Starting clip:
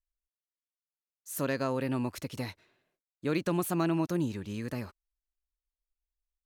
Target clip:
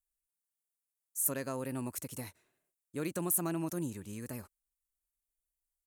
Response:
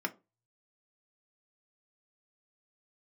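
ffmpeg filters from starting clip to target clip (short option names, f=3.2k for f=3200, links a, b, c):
-af "highshelf=f=6.2k:t=q:w=1.5:g=13,atempo=1.1,volume=-6.5dB"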